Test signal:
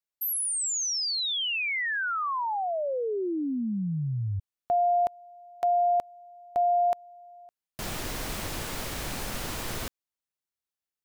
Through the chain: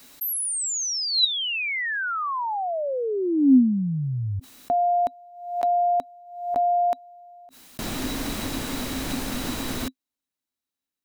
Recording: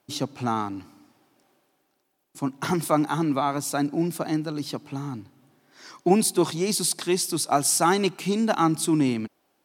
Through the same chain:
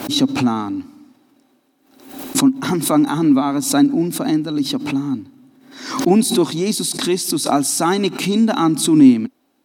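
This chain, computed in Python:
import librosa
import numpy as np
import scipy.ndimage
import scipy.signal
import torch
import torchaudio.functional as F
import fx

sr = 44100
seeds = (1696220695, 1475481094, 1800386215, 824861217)

y = fx.small_body(x, sr, hz=(260.0, 3900.0), ring_ms=70, db=15)
y = fx.pre_swell(y, sr, db_per_s=80.0)
y = F.gain(torch.from_numpy(y), 2.0).numpy()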